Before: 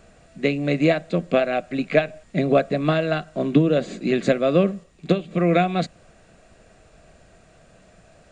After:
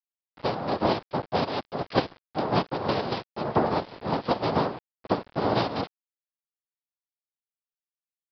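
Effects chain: noise vocoder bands 2; sample gate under -34.5 dBFS; downsampling 11025 Hz; gain -6.5 dB

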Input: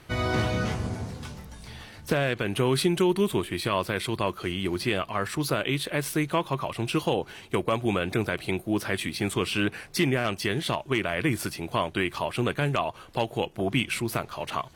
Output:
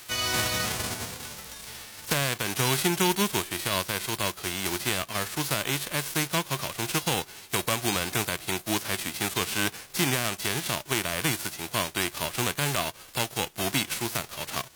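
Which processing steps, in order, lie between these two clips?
spectral whitening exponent 0.3; mismatched tape noise reduction encoder only; gain -1.5 dB

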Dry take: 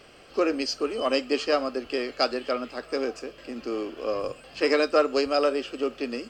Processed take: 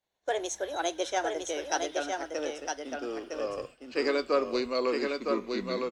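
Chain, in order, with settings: speed glide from 137% -> 76%; expander -35 dBFS; echo 0.96 s -4 dB; gain -6 dB

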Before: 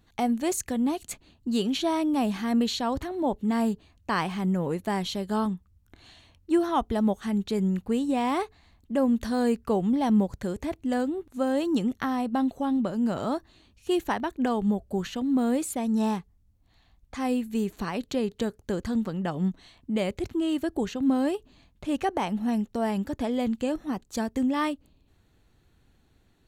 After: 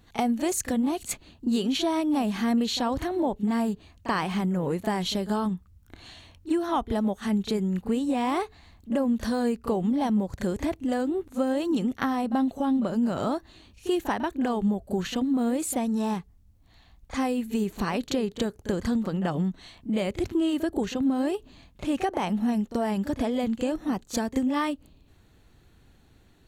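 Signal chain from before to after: compressor 4:1, threshold -29 dBFS, peak gain reduction 9.5 dB; reverse echo 34 ms -13 dB; gain +5.5 dB

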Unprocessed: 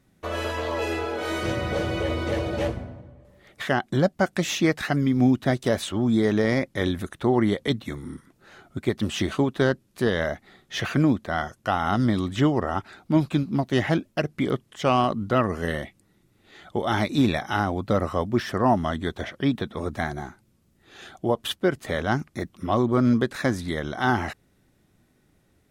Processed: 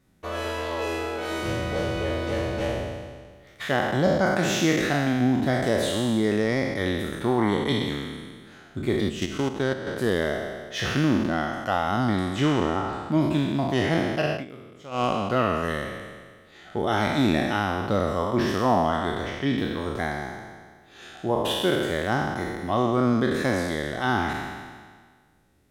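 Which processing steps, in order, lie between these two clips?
spectral trails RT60 1.65 s; 9.09–9.87 level quantiser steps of 10 dB; 14.32–15.04 dip -17.5 dB, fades 0.13 s; gain -3.5 dB

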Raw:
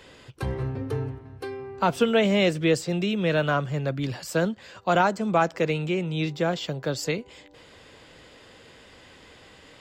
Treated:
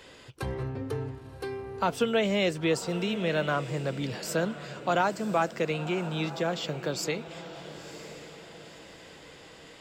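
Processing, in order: tone controls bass -3 dB, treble +2 dB; in parallel at -2 dB: compressor, threshold -30 dBFS, peak gain reduction 13.5 dB; on the sum: diffused feedback echo 1 s, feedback 43%, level -13 dB; gain -6 dB

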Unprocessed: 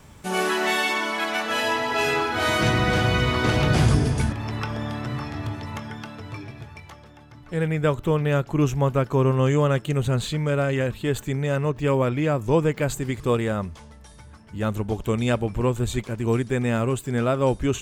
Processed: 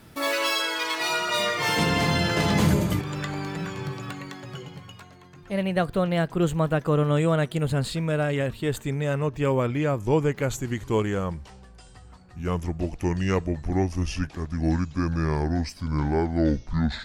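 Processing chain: speed glide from 152% -> 57%; gain -2 dB

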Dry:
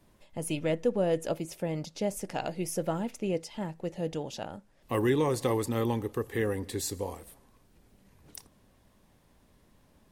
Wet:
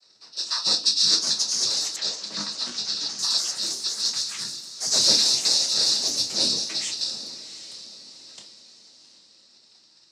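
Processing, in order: four-band scrambler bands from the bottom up 2341; in parallel at -5 dB: companded quantiser 4-bit; on the sum: noise vocoder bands 12; diffused feedback echo 0.759 s, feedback 41%, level -13.5 dB; on a send at -2 dB: reverb, pre-delay 5 ms; on the sum: echoes that change speed 0.67 s, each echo +3 st, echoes 3, each echo -6 dB; 1.96–3.19 BPF 160–4300 Hz

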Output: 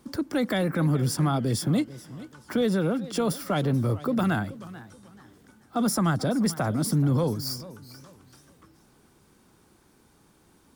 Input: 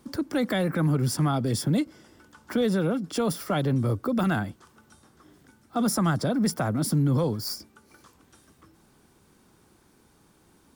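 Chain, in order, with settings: warbling echo 0.434 s, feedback 31%, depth 159 cents, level -17.5 dB

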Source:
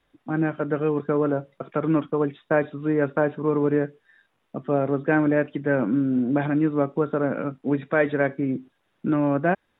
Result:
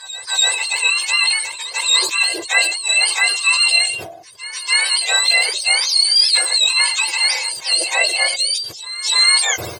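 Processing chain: spectrum mirrored in octaves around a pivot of 1100 Hz; high shelf 3100 Hz +11.5 dB; comb 1.9 ms, depth 44%; pre-echo 0.291 s -15 dB; sustainer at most 67 dB/s; gain +3 dB

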